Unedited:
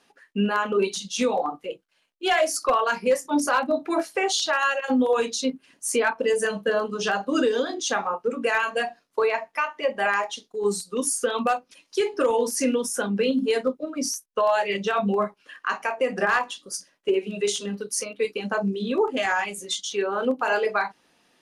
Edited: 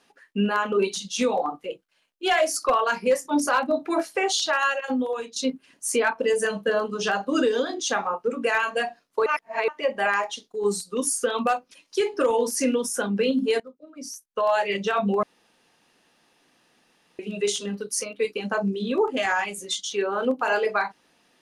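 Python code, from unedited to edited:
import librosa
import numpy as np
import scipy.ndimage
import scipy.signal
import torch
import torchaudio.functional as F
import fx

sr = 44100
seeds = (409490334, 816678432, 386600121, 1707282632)

y = fx.edit(x, sr, fx.fade_out_to(start_s=4.65, length_s=0.71, floor_db=-15.0),
    fx.reverse_span(start_s=9.26, length_s=0.42),
    fx.fade_in_from(start_s=13.6, length_s=0.93, curve='qua', floor_db=-20.0),
    fx.room_tone_fill(start_s=15.23, length_s=1.96), tone=tone)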